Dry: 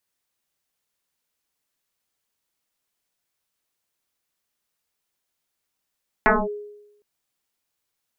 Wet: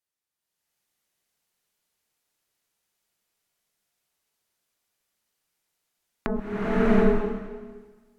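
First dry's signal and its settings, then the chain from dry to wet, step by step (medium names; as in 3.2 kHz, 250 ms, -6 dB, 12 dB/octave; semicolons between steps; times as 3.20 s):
FM tone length 0.76 s, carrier 415 Hz, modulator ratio 0.52, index 7.7, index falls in 0.22 s linear, decay 0.92 s, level -11 dB
low-pass that closes with the level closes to 350 Hz, closed at -32 dBFS; level held to a coarse grid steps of 13 dB; swelling reverb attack 720 ms, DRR -11.5 dB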